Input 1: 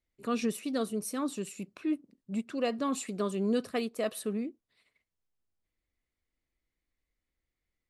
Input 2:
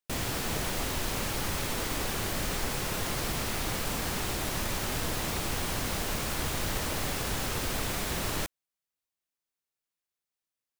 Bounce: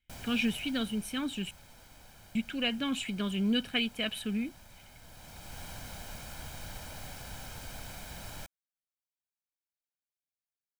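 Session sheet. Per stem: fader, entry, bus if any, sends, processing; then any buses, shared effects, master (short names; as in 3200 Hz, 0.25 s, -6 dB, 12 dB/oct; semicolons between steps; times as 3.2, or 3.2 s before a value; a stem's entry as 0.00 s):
+1.5 dB, 0.00 s, muted 1.51–2.35, no send, EQ curve 360 Hz 0 dB, 640 Hz -13 dB, 3100 Hz +12 dB, 4600 Hz -7 dB
-14.0 dB, 0.00 s, no send, auto duck -11 dB, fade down 1.30 s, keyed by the first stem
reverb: off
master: comb 1.3 ms, depth 59%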